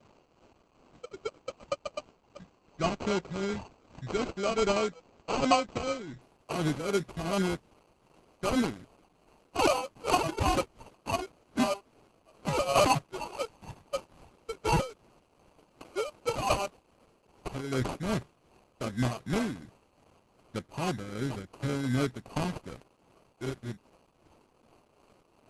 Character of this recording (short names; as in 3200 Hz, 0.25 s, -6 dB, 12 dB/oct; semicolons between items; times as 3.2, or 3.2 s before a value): a quantiser's noise floor 10-bit, dither triangular; tremolo triangle 2.6 Hz, depth 60%; aliases and images of a low sample rate 1800 Hz, jitter 0%; Opus